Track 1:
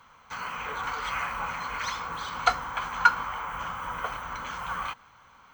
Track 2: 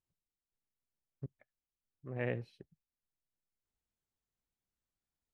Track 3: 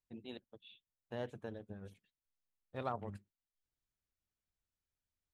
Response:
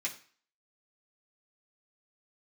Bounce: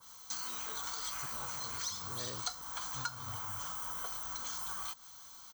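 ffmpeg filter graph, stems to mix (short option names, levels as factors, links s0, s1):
-filter_complex "[0:a]adynamicequalizer=threshold=0.0112:dfrequency=1900:dqfactor=0.7:tfrequency=1900:tqfactor=0.7:attack=5:release=100:ratio=0.375:range=1.5:mode=cutabove:tftype=highshelf,volume=0.447[s0];[1:a]volume=0.708[s1];[2:a]asubboost=boost=10:cutoff=140,flanger=delay=15.5:depth=6.5:speed=0.38,adelay=200,volume=0.631,asplit=2[s2][s3];[s3]volume=0.596,aecho=0:1:214:1[s4];[s0][s1][s2][s4]amix=inputs=4:normalize=0,aexciter=amount=8.8:drive=8.6:freq=3800,acompressor=threshold=0.0126:ratio=4"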